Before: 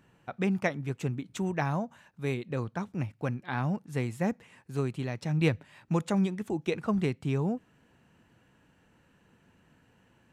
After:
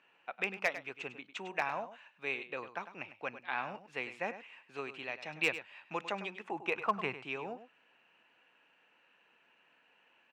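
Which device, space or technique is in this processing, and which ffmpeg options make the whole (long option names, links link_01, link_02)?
megaphone: -filter_complex "[0:a]asettb=1/sr,asplit=3[link_01][link_02][link_03];[link_01]atrim=end=6.444[link_04];[link_02]atrim=start=6.44:end=7.21,asetpts=PTS-STARTPTS,afade=type=in:duration=0.004:curve=qsin,afade=type=out:start_time=0.766:duration=0.004:curve=qsin,equalizer=frequency=125:width_type=o:width=1:gain=11,equalizer=frequency=1000:width_type=o:width=1:gain=9,equalizer=frequency=4000:width_type=o:width=1:gain=-6[link_05];[link_03]atrim=start=7.206[link_06];[link_04][link_05]acrossfade=duration=0.004:curve1=hsin:curve2=qsin[link_07];[link_07][link_06]acrossfade=duration=0.004:curve1=qsin:curve2=hsin,highpass=620,lowpass=3700,equalizer=frequency=2600:width_type=o:width=0.41:gain=10,asoftclip=type=hard:threshold=-19dB,aecho=1:1:101:0.237,volume=-1.5dB"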